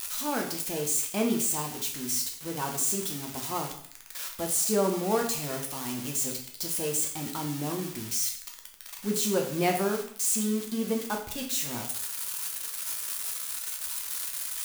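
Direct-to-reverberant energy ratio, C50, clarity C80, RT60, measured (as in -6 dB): 0.5 dB, 7.0 dB, 10.5 dB, 0.55 s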